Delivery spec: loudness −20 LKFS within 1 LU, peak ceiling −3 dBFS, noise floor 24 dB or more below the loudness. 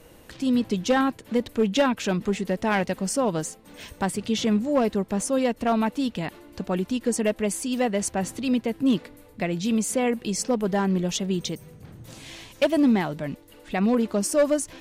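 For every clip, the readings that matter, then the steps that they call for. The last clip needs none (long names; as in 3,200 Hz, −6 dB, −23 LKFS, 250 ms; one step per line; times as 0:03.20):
share of clipped samples 0.6%; peaks flattened at −14.0 dBFS; integrated loudness −25.0 LKFS; sample peak −14.0 dBFS; target loudness −20.0 LKFS
→ clipped peaks rebuilt −14 dBFS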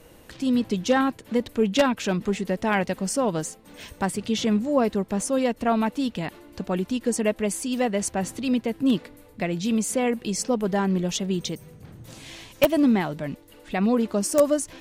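share of clipped samples 0.0%; integrated loudness −24.5 LKFS; sample peak −5.0 dBFS; target loudness −20.0 LKFS
→ level +4.5 dB
brickwall limiter −3 dBFS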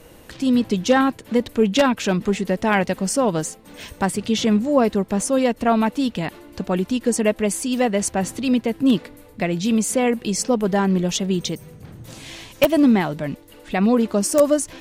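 integrated loudness −20.5 LKFS; sample peak −3.0 dBFS; background noise floor −46 dBFS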